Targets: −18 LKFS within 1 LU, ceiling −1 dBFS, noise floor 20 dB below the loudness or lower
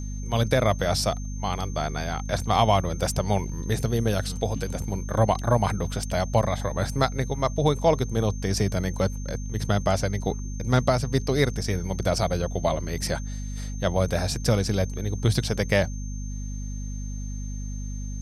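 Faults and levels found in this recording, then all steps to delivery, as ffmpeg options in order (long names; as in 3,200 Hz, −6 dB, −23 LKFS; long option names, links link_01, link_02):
mains hum 50 Hz; hum harmonics up to 250 Hz; level of the hum −29 dBFS; interfering tone 6,300 Hz; level of the tone −44 dBFS; integrated loudness −26.0 LKFS; sample peak −7.5 dBFS; target loudness −18.0 LKFS
→ -af "bandreject=frequency=50:width_type=h:width=6,bandreject=frequency=100:width_type=h:width=6,bandreject=frequency=150:width_type=h:width=6,bandreject=frequency=200:width_type=h:width=6,bandreject=frequency=250:width_type=h:width=6"
-af "bandreject=frequency=6300:width=30"
-af "volume=8dB,alimiter=limit=-1dB:level=0:latency=1"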